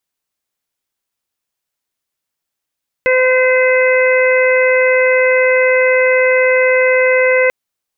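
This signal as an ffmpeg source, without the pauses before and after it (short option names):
-f lavfi -i "aevalsrc='0.299*sin(2*PI*512*t)+0.0596*sin(2*PI*1024*t)+0.106*sin(2*PI*1536*t)+0.188*sin(2*PI*2048*t)+0.0794*sin(2*PI*2560*t)':d=4.44:s=44100"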